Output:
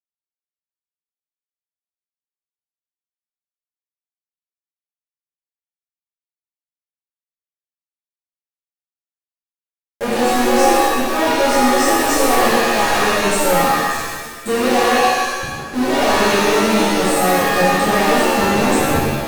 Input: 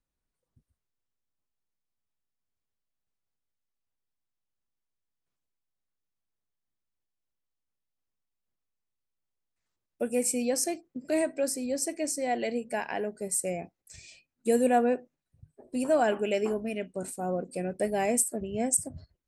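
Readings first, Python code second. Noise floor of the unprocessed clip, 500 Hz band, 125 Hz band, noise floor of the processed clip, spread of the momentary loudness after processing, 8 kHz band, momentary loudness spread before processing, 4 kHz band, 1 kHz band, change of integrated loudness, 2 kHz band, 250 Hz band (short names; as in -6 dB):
under -85 dBFS, +12.0 dB, +17.0 dB, under -85 dBFS, 7 LU, +8.5 dB, 10 LU, +23.0 dB, +19.0 dB, +14.0 dB, +21.0 dB, +13.0 dB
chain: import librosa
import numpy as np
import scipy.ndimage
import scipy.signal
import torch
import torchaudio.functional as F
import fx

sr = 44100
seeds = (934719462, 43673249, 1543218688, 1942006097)

y = fx.env_lowpass_down(x, sr, base_hz=2300.0, full_db=-23.0)
y = fx.fuzz(y, sr, gain_db=51.0, gate_db=-44.0)
y = fx.rev_shimmer(y, sr, seeds[0], rt60_s=1.2, semitones=7, shimmer_db=-2, drr_db=-9.0)
y = y * 10.0 ** (-12.0 / 20.0)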